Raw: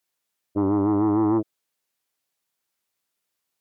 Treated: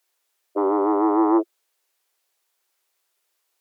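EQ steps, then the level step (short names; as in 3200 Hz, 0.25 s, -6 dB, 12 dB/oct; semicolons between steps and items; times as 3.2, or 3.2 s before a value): elliptic high-pass 350 Hz, stop band 40 dB; +7.5 dB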